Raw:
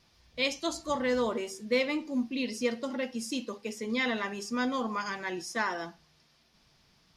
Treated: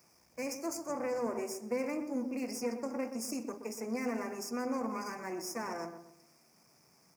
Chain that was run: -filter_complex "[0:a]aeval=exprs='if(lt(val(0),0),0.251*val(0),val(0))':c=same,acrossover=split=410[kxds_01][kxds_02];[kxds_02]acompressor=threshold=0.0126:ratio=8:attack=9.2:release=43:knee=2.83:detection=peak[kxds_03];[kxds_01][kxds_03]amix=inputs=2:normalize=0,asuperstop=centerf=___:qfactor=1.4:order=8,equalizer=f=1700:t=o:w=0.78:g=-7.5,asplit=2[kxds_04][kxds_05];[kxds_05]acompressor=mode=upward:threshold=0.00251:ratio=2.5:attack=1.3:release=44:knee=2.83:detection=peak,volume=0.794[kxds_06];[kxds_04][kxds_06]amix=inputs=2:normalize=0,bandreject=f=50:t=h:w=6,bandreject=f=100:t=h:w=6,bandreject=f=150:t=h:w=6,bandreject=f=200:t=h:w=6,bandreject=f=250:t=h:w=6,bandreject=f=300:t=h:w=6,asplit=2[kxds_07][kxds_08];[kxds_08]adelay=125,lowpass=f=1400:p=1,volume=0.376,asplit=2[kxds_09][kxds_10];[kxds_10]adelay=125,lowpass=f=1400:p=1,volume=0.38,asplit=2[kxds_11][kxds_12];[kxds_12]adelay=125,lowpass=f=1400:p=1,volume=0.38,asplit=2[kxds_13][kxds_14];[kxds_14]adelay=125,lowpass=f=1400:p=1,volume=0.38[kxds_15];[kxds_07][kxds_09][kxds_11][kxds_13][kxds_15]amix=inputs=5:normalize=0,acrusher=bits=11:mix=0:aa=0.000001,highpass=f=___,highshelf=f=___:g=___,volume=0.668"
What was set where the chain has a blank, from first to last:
3500, 160, 10000, 6